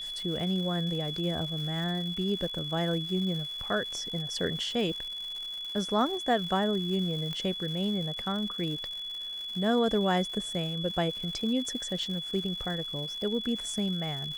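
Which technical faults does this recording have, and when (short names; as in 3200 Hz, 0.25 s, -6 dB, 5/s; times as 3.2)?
crackle 270/s -38 dBFS
tone 3400 Hz -35 dBFS
7.33 pop -22 dBFS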